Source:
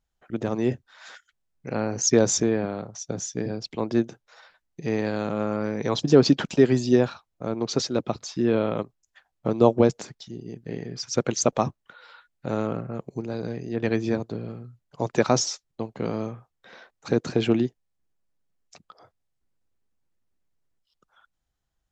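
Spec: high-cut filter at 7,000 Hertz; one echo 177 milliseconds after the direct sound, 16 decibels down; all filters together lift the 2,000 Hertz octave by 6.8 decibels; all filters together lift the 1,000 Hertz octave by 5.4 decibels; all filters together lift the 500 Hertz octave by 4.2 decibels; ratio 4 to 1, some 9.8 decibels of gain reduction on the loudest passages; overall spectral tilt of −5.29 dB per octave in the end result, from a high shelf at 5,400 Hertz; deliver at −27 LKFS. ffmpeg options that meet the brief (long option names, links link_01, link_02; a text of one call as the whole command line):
ffmpeg -i in.wav -af "lowpass=7000,equalizer=frequency=500:width_type=o:gain=4,equalizer=frequency=1000:width_type=o:gain=4,equalizer=frequency=2000:width_type=o:gain=8,highshelf=frequency=5400:gain=-6.5,acompressor=threshold=-19dB:ratio=4,aecho=1:1:177:0.158" out.wav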